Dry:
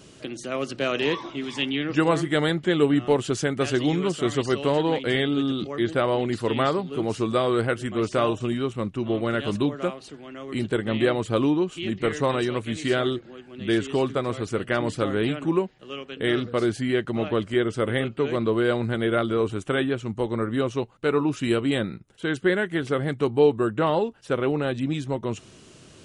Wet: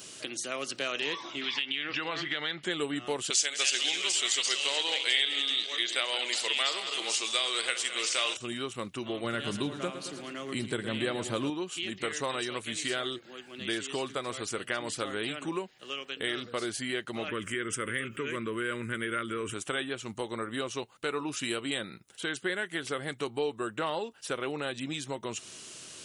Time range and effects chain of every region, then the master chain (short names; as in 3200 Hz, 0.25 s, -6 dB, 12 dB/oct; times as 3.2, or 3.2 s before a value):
1.41–2.63 LPF 4600 Hz 24 dB/oct + bell 2600 Hz +9 dB 2.3 oct + compressor, threshold -22 dBFS
3.3–8.37 regenerating reverse delay 0.103 s, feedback 72%, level -12 dB + HPF 450 Hz + band shelf 4200 Hz +13 dB 2.4 oct
9.24–11.5 bell 140 Hz +8.5 dB 2.1 oct + feedback echo 0.111 s, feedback 57%, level -13 dB
17.28–19.54 fixed phaser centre 1800 Hz, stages 4 + fast leveller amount 50%
whole clip: tilt +3.5 dB/oct; compressor 2:1, threshold -35 dBFS